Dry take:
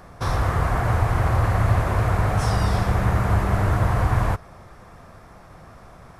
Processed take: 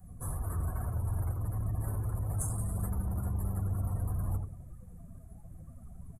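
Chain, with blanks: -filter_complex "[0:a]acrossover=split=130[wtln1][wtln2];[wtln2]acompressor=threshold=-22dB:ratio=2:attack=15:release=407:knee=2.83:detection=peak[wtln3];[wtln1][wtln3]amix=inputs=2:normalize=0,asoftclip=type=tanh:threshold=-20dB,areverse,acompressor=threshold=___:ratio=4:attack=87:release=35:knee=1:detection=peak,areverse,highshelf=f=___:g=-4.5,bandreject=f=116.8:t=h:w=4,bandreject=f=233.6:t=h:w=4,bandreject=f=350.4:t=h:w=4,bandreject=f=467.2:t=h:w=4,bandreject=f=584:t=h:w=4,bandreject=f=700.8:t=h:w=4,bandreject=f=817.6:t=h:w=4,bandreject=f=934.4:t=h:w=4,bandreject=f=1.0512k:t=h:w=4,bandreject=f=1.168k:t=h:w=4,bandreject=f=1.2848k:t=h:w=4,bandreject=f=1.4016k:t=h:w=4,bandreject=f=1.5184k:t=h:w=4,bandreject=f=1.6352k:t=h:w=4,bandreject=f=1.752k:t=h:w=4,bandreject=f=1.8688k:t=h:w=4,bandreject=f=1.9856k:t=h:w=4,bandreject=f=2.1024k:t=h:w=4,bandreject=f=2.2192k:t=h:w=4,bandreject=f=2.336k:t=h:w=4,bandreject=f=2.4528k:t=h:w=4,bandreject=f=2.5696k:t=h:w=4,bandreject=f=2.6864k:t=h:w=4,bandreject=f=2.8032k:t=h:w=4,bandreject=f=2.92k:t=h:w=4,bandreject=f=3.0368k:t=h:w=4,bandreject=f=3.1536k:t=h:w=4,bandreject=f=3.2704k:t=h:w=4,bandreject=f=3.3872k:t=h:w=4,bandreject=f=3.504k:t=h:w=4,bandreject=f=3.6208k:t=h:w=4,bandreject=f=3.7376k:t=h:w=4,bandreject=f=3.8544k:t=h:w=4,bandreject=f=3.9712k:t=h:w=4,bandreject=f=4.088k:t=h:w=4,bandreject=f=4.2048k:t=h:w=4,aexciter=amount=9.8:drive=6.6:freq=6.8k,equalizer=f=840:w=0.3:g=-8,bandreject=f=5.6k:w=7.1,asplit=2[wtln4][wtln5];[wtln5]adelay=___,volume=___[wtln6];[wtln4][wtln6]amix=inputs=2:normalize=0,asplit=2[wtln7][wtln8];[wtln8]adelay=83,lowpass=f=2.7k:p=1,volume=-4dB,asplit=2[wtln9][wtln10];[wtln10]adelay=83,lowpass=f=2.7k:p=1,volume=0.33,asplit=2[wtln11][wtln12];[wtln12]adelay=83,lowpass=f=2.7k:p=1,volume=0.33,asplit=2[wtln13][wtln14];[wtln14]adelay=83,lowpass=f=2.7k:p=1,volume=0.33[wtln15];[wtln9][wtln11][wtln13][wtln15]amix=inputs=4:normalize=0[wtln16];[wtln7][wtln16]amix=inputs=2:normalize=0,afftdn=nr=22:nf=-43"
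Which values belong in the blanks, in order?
-39dB, 2.4k, 12, -14dB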